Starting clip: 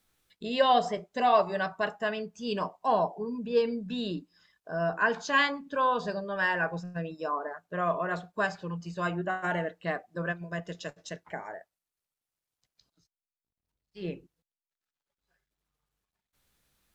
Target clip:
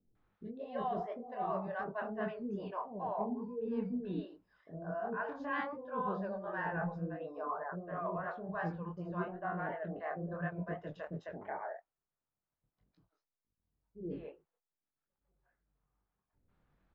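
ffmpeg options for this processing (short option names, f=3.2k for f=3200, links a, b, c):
-filter_complex "[0:a]lowpass=1.2k,areverse,acompressor=threshold=-37dB:ratio=6,areverse,flanger=delay=19.5:depth=7.3:speed=2.8,acrossover=split=490[a][b];[b]adelay=150[c];[a][c]amix=inputs=2:normalize=0,volume=6dB"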